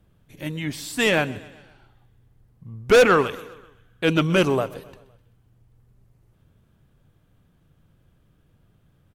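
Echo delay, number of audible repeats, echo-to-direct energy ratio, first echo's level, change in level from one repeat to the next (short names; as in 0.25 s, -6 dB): 0.128 s, 3, -19.0 dB, -20.5 dB, -5.5 dB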